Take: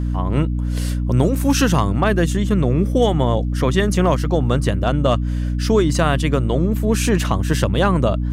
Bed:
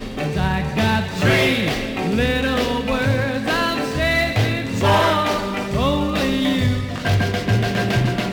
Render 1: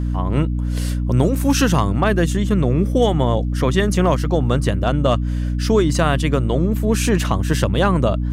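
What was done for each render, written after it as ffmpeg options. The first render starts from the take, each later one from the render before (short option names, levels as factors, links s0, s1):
-af anull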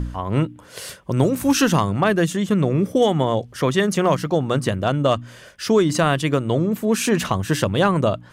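-af "bandreject=f=60:t=h:w=4,bandreject=f=120:t=h:w=4,bandreject=f=180:t=h:w=4,bandreject=f=240:t=h:w=4,bandreject=f=300:t=h:w=4"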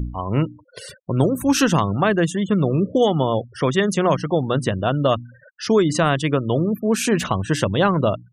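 -af "afftfilt=real='re*gte(hypot(re,im),0.0251)':imag='im*gte(hypot(re,im),0.0251)':win_size=1024:overlap=0.75"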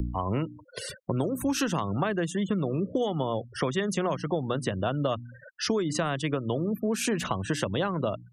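-filter_complex "[0:a]acrossover=split=170|760|2500[s0][s1][s2][s3];[s0]alimiter=limit=0.0668:level=0:latency=1:release=216[s4];[s4][s1][s2][s3]amix=inputs=4:normalize=0,acompressor=threshold=0.0562:ratio=5"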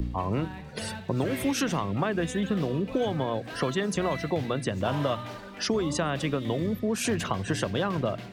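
-filter_complex "[1:a]volume=0.1[s0];[0:a][s0]amix=inputs=2:normalize=0"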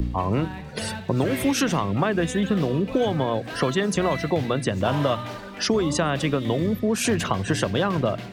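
-af "volume=1.78"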